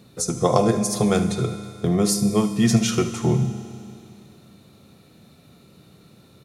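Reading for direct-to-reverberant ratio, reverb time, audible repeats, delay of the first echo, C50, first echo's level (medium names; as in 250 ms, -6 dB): 8.0 dB, 2.5 s, 1, 74 ms, 8.5 dB, -15.0 dB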